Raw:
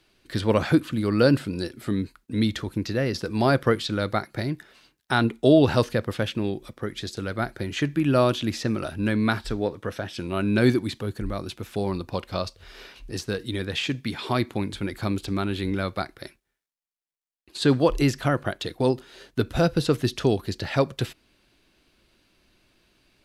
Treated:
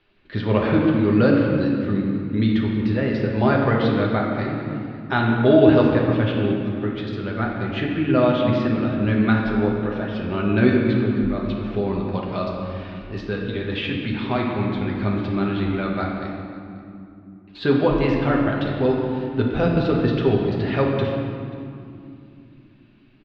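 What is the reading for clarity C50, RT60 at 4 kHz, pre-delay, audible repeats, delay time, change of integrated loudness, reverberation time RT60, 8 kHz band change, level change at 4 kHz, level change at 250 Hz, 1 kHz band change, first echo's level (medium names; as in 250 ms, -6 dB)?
1.5 dB, 1.6 s, 5 ms, 1, 536 ms, +4.0 dB, 2.7 s, under -20 dB, -2.5 dB, +5.5 dB, +3.5 dB, -20.5 dB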